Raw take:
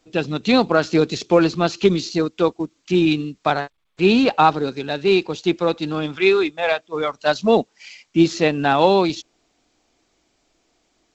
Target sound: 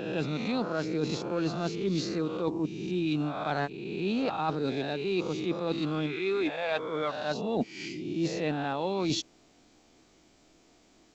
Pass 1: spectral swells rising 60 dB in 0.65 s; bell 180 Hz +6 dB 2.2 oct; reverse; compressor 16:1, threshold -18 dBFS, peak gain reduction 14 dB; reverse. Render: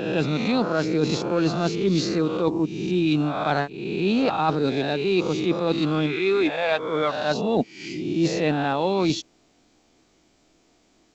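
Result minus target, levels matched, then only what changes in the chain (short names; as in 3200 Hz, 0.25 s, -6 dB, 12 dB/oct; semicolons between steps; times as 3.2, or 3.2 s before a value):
compressor: peak gain reduction -8 dB
change: compressor 16:1, threshold -26.5 dBFS, peak gain reduction 22 dB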